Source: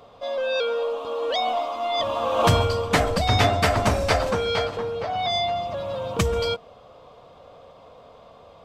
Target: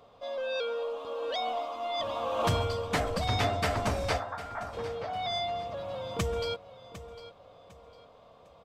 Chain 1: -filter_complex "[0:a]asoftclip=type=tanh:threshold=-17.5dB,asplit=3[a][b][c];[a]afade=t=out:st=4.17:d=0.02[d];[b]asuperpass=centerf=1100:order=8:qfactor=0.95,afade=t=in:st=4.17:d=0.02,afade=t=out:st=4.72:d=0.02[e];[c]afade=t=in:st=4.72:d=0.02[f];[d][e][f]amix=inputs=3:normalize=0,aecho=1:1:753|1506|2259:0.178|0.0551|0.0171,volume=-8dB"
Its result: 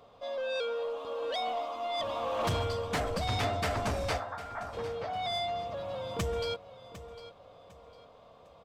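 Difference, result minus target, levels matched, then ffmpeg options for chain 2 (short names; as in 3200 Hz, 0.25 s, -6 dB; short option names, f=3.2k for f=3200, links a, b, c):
soft clip: distortion +10 dB
-filter_complex "[0:a]asoftclip=type=tanh:threshold=-9.5dB,asplit=3[a][b][c];[a]afade=t=out:st=4.17:d=0.02[d];[b]asuperpass=centerf=1100:order=8:qfactor=0.95,afade=t=in:st=4.17:d=0.02,afade=t=out:st=4.72:d=0.02[e];[c]afade=t=in:st=4.72:d=0.02[f];[d][e][f]amix=inputs=3:normalize=0,aecho=1:1:753|1506|2259:0.178|0.0551|0.0171,volume=-8dB"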